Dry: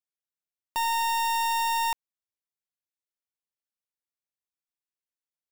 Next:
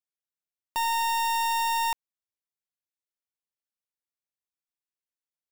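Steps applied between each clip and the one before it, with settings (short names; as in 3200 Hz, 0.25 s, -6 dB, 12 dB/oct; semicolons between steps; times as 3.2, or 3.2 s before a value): nothing audible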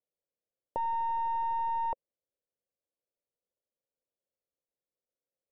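synth low-pass 530 Hz, resonance Q 4.9; gain +2 dB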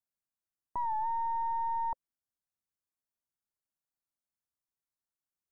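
fixed phaser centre 1200 Hz, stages 4; record warp 45 rpm, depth 100 cents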